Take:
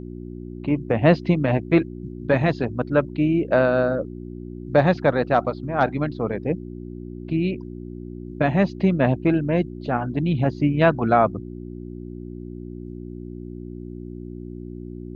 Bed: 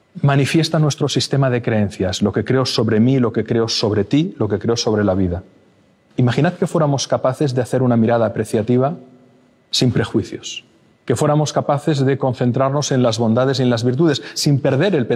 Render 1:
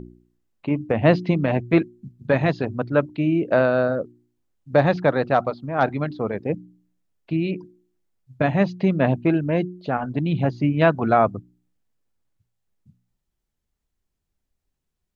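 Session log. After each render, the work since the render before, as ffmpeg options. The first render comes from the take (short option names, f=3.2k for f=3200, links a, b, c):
-af "bandreject=f=60:t=h:w=4,bandreject=f=120:t=h:w=4,bandreject=f=180:t=h:w=4,bandreject=f=240:t=h:w=4,bandreject=f=300:t=h:w=4,bandreject=f=360:t=h:w=4"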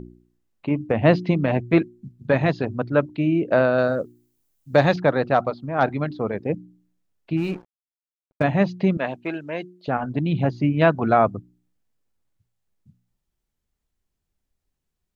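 -filter_complex "[0:a]asettb=1/sr,asplit=3[a][b][c];[a]atrim=end=3.784[d];[b]atrim=start=3.78:end=4.96,asetpts=PTS-STARTPTS,afade=t=in:d=0.004:c=qsin,afade=t=out:st=1.176:d=0.004:c=qsin,aemphasis=mode=production:type=75kf[e];[c]atrim=start=4.956[f];[d][e]acrossfade=d=0.004:c1=hsin:c2=qsin[g];[g][f]acrossfade=d=0.004:c1=qsin:c2=hsin,asplit=3[h][i][j];[h]afade=t=out:st=7.36:d=0.02[k];[i]aeval=exprs='sgn(val(0))*max(abs(val(0))-0.0112,0)':c=same,afade=t=in:st=7.36:d=0.02,afade=t=out:st=8.42:d=0.02[l];[j]afade=t=in:st=8.42:d=0.02[m];[k][l][m]amix=inputs=3:normalize=0,asettb=1/sr,asplit=3[n][o][p];[n]atrim=end=8.974[q];[o]atrim=start=8.97:end=9.88,asetpts=PTS-STARTPTS,afade=t=in:d=0.004:c=qsin,afade=t=out:st=0.906:d=0.004:c=qsin,highpass=f=960:p=1[r];[p]atrim=start=9.876[s];[q][r]acrossfade=d=0.004:c1=hsin:c2=qsin[t];[t][s]acrossfade=d=0.004:c1=qsin:c2=hsin"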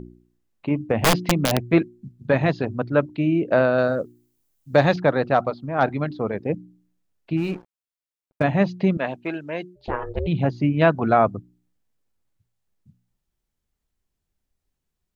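-filter_complex "[0:a]asettb=1/sr,asplit=3[a][b][c];[a]atrim=end=0.994[d];[b]atrim=start=0.99:end=1.71,asetpts=PTS-STARTPTS,afade=t=in:d=0.004:c=qsin,afade=t=out:st=0.716:d=0.004:c=qsin,aeval=exprs='(mod(3.16*val(0)+1,2)-1)/3.16':c=same[e];[c]atrim=start=1.706[f];[d][e]acrossfade=d=0.004:c1=hsin:c2=qsin[g];[g][f]acrossfade=d=0.004:c1=qsin:c2=hsin,asplit=3[h][i][j];[h]afade=t=out:st=9.75:d=0.02[k];[i]aeval=exprs='val(0)*sin(2*PI*230*n/s)':c=same,afade=t=in:st=9.75:d=0.02,afade=t=out:st=10.26:d=0.02[l];[j]afade=t=in:st=10.26:d=0.02[m];[k][l][m]amix=inputs=3:normalize=0"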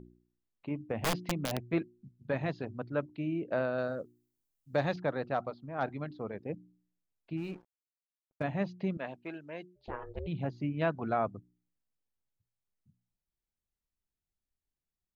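-af "volume=-13.5dB"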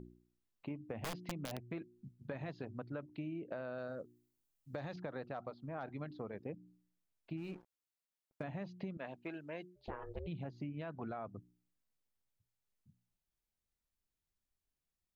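-af "alimiter=level_in=0.5dB:limit=-24dB:level=0:latency=1:release=45,volume=-0.5dB,acompressor=threshold=-40dB:ratio=6"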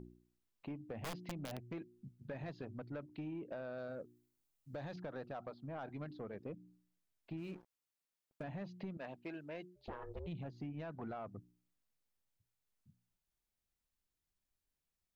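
-af "asoftclip=type=tanh:threshold=-36dB"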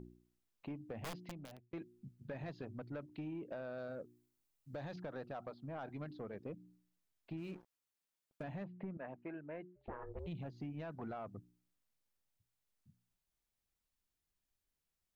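-filter_complex "[0:a]asettb=1/sr,asplit=3[a][b][c];[a]atrim=end=8.644[d];[b]atrim=start=8.64:end=10.19,asetpts=PTS-STARTPTS,afade=t=in:d=0.004:c=qsin,afade=t=out:st=1.546:d=0.004:c=qsin,lowpass=f=2.1k:w=0.5412,lowpass=f=2.1k:w=1.3066[e];[c]atrim=start=10.186[f];[d][e]acrossfade=d=0.004:c1=hsin:c2=qsin[g];[g][f]acrossfade=d=0.004:c1=qsin:c2=hsin,asplit=2[h][i];[h]atrim=end=1.73,asetpts=PTS-STARTPTS,afade=t=out:st=0.78:d=0.95:c=qsin[j];[i]atrim=start=1.73,asetpts=PTS-STARTPTS,afade=t=in:d=0.004:c=hsin[k];[j][k]concat=n=2:v=0:a=1"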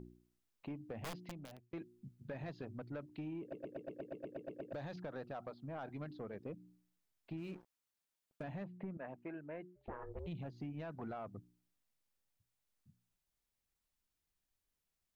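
-filter_complex "[0:a]asplit=12[a][b][c][d][e][f][g][h][i][j][k][l];[a]atrim=end=3.532[m];[b]atrim=start=3.408:end=3.532[n];[c]atrim=start=3.408:end=3.532[o];[d]atrim=start=3.408:end=3.532[p];[e]atrim=start=3.408:end=3.532[q];[f]atrim=start=3.408:end=3.532[r];[g]atrim=start=3.408:end=3.532[s];[h]atrim=start=3.408:end=3.532[t];[i]atrim=start=3.408:end=3.532[u];[j]atrim=start=3.408:end=3.532[v];[k]atrim=start=3.408:end=3.532[w];[l]atrim=start=4.728[x];[m][n]acrossfade=d=0.004:c1=hsin:c2=hsin[y];[y][o]acrossfade=d=0.004:c1=hsin:c2=hsin[z];[z][p]acrossfade=d=0.004:c1=hsin:c2=hsin[aa];[aa][q]acrossfade=d=0.004:c1=hsin:c2=hsin[ab];[ab][r]acrossfade=d=0.004:c1=hsin:c2=hsin[ac];[ac][s]acrossfade=d=0.004:c1=hsin:c2=hsin[ad];[ad][t]acrossfade=d=0.004:c1=hsin:c2=hsin[ae];[ae][u]acrossfade=d=0.004:c1=hsin:c2=hsin[af];[af][v]acrossfade=d=0.004:c1=hsin:c2=hsin[ag];[ag][w]acrossfade=d=0.004:c1=hsin:c2=hsin[ah];[ah][x]acrossfade=d=0.004:c1=hsin:c2=hsin"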